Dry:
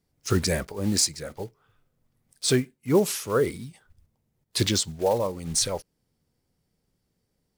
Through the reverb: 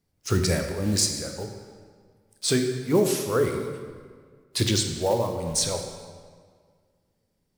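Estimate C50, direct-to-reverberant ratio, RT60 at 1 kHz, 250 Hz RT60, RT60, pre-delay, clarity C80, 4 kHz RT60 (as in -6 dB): 6.0 dB, 4.0 dB, 1.8 s, 1.9 s, 1.8 s, 9 ms, 7.0 dB, 1.3 s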